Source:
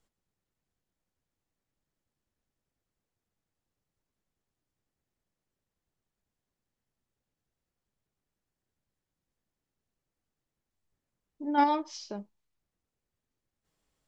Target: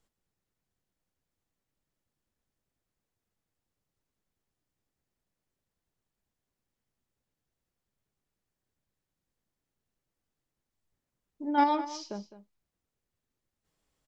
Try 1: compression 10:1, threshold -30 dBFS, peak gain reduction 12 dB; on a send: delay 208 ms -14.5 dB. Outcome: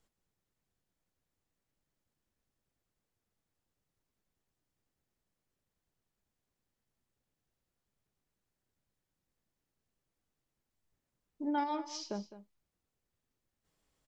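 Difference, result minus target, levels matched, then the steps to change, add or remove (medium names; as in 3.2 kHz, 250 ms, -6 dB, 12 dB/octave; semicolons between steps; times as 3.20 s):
compression: peak gain reduction +12 dB
remove: compression 10:1, threshold -30 dBFS, peak gain reduction 12 dB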